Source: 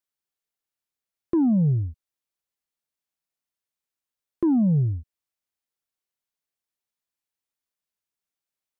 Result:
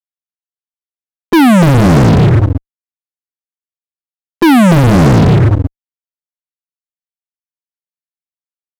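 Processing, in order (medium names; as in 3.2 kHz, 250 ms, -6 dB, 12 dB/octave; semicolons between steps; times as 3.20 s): hum notches 50/100/150 Hz; in parallel at -1.5 dB: compressor with a negative ratio -23 dBFS, ratio -0.5; on the sum: loudest bins only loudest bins 8; on a send: bouncing-ball echo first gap 290 ms, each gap 0.6×, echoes 5; on the sum: fuzz box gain 36 dB, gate -40 dBFS; loudness maximiser +18 dB; trim -3.5 dB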